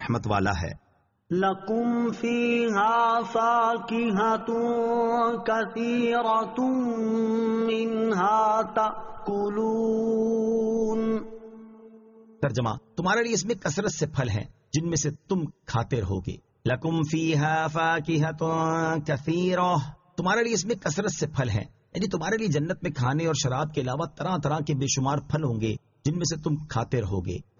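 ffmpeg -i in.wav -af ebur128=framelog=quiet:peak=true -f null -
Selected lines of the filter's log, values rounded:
Integrated loudness:
  I:         -26.1 LUFS
  Threshold: -36.3 LUFS
Loudness range:
  LRA:         4.0 LU
  Threshold: -46.2 LUFS
  LRA low:   -28.2 LUFS
  LRA high:  -24.2 LUFS
True peak:
  Peak:      -11.7 dBFS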